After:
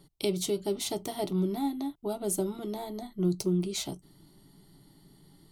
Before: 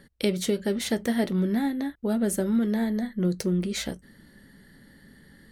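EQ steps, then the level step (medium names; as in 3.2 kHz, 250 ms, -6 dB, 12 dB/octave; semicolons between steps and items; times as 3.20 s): static phaser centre 340 Hz, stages 8; 0.0 dB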